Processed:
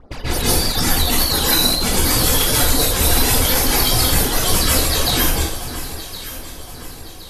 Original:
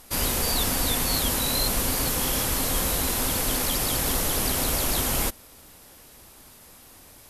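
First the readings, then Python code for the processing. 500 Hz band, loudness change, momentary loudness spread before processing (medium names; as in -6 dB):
+8.5 dB, +8.0 dB, 1 LU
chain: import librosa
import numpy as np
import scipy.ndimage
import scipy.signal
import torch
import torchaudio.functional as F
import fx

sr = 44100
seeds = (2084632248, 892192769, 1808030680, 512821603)

y = fx.dereverb_blind(x, sr, rt60_s=1.3)
y = fx.over_compress(y, sr, threshold_db=-29.0, ratio=-0.5)
y = fx.env_lowpass(y, sr, base_hz=770.0, full_db=-24.5)
y = fx.peak_eq(y, sr, hz=210.0, db=-5.0, octaves=0.52)
y = fx.dereverb_blind(y, sr, rt60_s=1.6)
y = fx.phaser_stages(y, sr, stages=12, low_hz=130.0, high_hz=2800.0, hz=3.5, feedback_pct=25)
y = fx.echo_alternate(y, sr, ms=534, hz=1500.0, feedback_pct=66, wet_db=-10.0)
y = fx.rev_plate(y, sr, seeds[0], rt60_s=0.63, hf_ratio=1.0, predelay_ms=120, drr_db=-9.0)
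y = y * 10.0 ** (8.5 / 20.0)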